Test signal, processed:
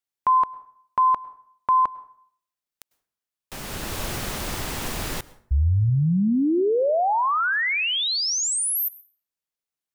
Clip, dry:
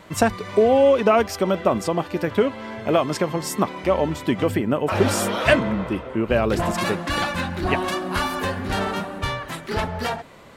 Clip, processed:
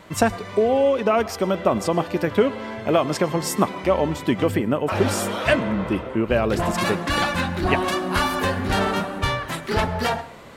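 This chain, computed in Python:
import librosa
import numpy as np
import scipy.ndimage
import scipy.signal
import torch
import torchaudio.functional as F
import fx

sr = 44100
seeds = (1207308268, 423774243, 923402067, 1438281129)

y = fx.rev_plate(x, sr, seeds[0], rt60_s=0.6, hf_ratio=0.6, predelay_ms=90, drr_db=19.5)
y = fx.rider(y, sr, range_db=3, speed_s=0.5)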